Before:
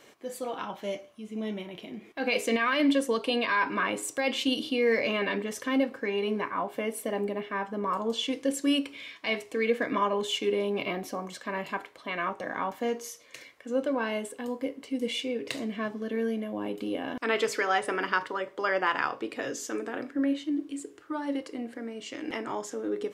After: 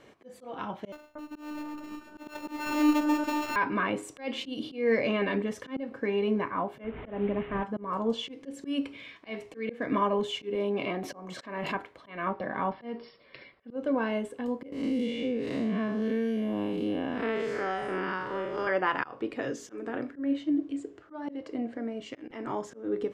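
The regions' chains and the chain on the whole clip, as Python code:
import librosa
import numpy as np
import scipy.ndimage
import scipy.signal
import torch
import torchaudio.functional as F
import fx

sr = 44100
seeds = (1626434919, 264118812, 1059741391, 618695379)

y = fx.chain(x, sr, fx.sample_sort(block=32),
    fx.robotise(hz=301.0),
    fx.echo_alternate(ms=234, hz=1500.0, feedback_pct=55, wet_db=-4), at=(0.92, 3.56))
y = fx.chain(y, sr, fx.delta_mod(bps=16000, step_db=-36.5),
    fx.highpass(hz=73.0, slope=6),
    fx.low_shelf(hz=92.0, db=9.5), at=(6.84, 7.64))
y = fx.chain(y, sr, fx.highpass(hz=230.0, slope=6),
    fx.pre_swell(db_per_s=45.0), at=(10.55, 11.75))
y = fx.chain(y, sr, fx.brickwall_lowpass(high_hz=5500.0),
    fx.comb(ms=5.2, depth=0.33), at=(12.26, 13.76))
y = fx.chain(y, sr, fx.spec_blur(span_ms=147.0),
    fx.band_squash(depth_pct=100), at=(14.72, 18.67))
y = fx.chain(y, sr, fx.lowpass(hz=8300.0, slope=24),
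    fx.peak_eq(hz=650.0, db=7.0, octaves=0.31), at=(20.41, 22.02))
y = fx.lowpass(y, sr, hz=2200.0, slope=6)
y = fx.low_shelf(y, sr, hz=160.0, db=11.0)
y = fx.auto_swell(y, sr, attack_ms=205.0)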